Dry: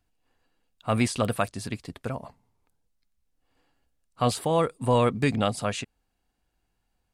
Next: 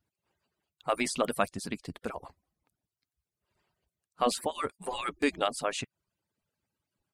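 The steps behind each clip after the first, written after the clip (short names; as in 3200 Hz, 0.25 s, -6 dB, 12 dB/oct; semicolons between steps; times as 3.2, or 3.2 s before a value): median-filter separation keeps percussive; gain -1.5 dB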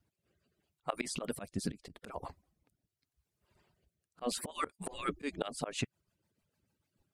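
low shelf 420 Hz +4 dB; auto swell 0.254 s; rotary speaker horn 0.8 Hz, later 6.7 Hz, at 4.79; gain +4.5 dB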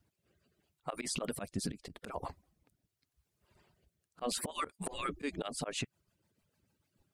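limiter -28.5 dBFS, peak gain reduction 10 dB; gain +3 dB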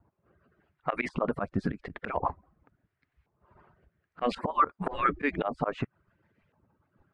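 LFO low-pass saw up 0.92 Hz 950–2200 Hz; gain +7.5 dB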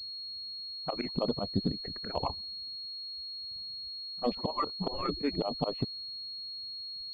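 envelope phaser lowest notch 340 Hz, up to 1600 Hz, full sweep at -30 dBFS; low-pass opened by the level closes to 300 Hz, open at -28 dBFS; pulse-width modulation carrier 4300 Hz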